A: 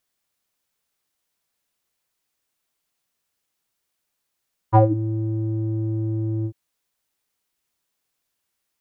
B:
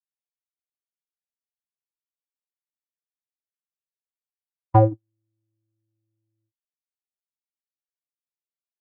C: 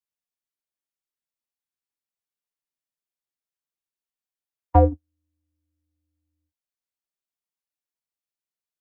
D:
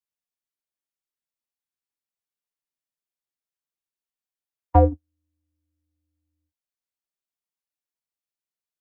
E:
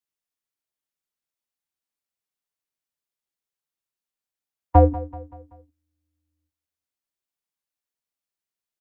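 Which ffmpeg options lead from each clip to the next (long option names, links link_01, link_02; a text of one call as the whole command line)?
ffmpeg -i in.wav -af "agate=range=-55dB:threshold=-17dB:ratio=16:detection=peak" out.wav
ffmpeg -i in.wav -af "afreqshift=-29" out.wav
ffmpeg -i in.wav -af anull out.wav
ffmpeg -i in.wav -af "aecho=1:1:191|382|573|764:0.141|0.0664|0.0312|0.0147,volume=1.5dB" out.wav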